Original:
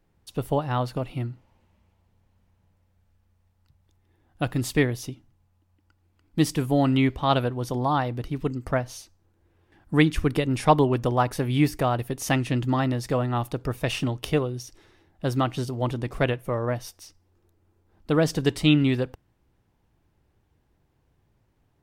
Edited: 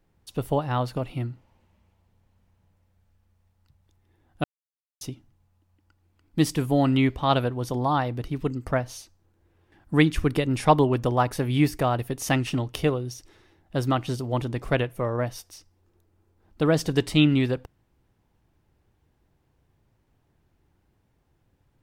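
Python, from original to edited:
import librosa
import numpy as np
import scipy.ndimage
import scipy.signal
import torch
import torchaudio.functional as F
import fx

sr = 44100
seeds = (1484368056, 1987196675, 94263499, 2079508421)

y = fx.edit(x, sr, fx.silence(start_s=4.44, length_s=0.57),
    fx.cut(start_s=12.47, length_s=1.49), tone=tone)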